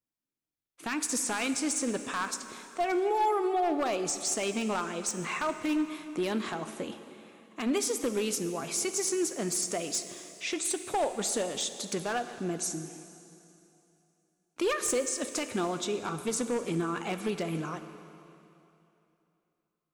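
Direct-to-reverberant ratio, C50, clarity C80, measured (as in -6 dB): 9.0 dB, 10.0 dB, 11.0 dB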